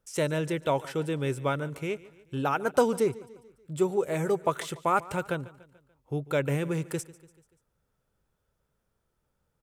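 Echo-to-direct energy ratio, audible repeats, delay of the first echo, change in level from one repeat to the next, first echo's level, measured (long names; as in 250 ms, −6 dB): −18.5 dB, 3, 145 ms, −5.5 dB, −20.0 dB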